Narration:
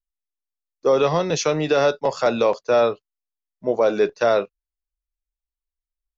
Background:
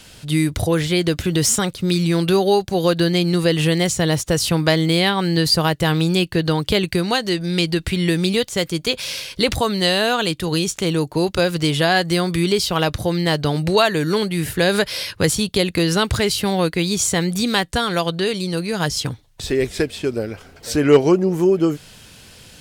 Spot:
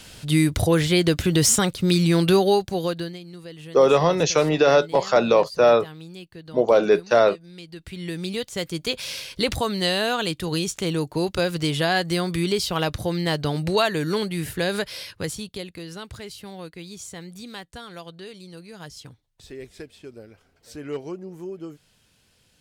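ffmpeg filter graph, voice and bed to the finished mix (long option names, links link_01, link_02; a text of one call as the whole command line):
ffmpeg -i stem1.wav -i stem2.wav -filter_complex "[0:a]adelay=2900,volume=1.5dB[link_01];[1:a]volume=17dB,afade=type=out:start_time=2.31:duration=0.88:silence=0.0794328,afade=type=in:start_time=7.67:duration=1.3:silence=0.133352,afade=type=out:start_time=14.19:duration=1.59:silence=0.199526[link_02];[link_01][link_02]amix=inputs=2:normalize=0" out.wav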